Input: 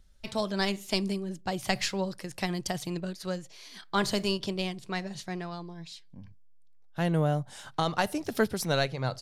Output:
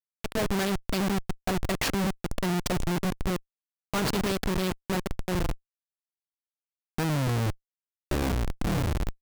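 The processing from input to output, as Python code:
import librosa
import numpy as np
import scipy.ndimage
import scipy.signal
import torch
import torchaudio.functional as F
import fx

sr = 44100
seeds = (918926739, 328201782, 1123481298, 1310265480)

y = fx.tape_stop_end(x, sr, length_s=2.33)
y = fx.schmitt(y, sr, flips_db=-31.0)
y = F.gain(torch.from_numpy(y), 6.0).numpy()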